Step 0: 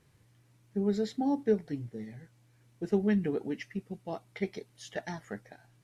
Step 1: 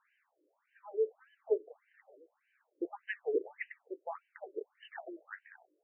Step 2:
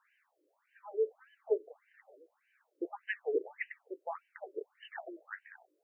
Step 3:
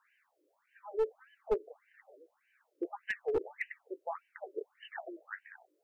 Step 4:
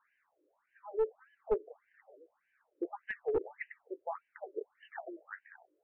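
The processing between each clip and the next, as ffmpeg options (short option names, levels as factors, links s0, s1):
-af "afftfilt=real='re*between(b*sr/1024,410*pow(2200/410,0.5+0.5*sin(2*PI*1.7*pts/sr))/1.41,410*pow(2200/410,0.5+0.5*sin(2*PI*1.7*pts/sr))*1.41)':imag='im*between(b*sr/1024,410*pow(2200/410,0.5+0.5*sin(2*PI*1.7*pts/sr))/1.41,410*pow(2200/410,0.5+0.5*sin(2*PI*1.7*pts/sr))*1.41)':win_size=1024:overlap=0.75,volume=1.41"
-af "lowshelf=f=270:g=-9,volume=1.33"
-af "aeval=exprs='clip(val(0),-1,0.0398)':c=same,volume=1.12"
-af "lowpass=1700"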